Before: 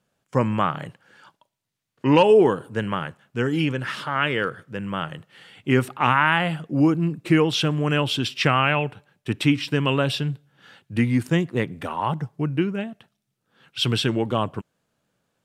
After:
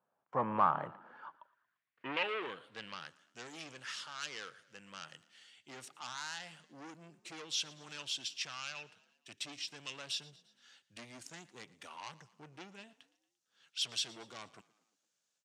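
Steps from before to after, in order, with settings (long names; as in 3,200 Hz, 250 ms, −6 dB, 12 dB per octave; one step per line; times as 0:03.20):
high-pass filter 58 Hz 24 dB per octave
automatic gain control gain up to 9.5 dB
low-shelf EQ 500 Hz +7.5 dB
soft clipping −12 dBFS, distortion −8 dB
on a send: echo with shifted repeats 115 ms, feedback 54%, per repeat +31 Hz, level −21.5 dB
on the sum: band-pass filter sweep 940 Hz → 6,400 Hz, 0:01.14–0:03.24
high-shelf EQ 5,800 Hz −7 dB
level −2.5 dB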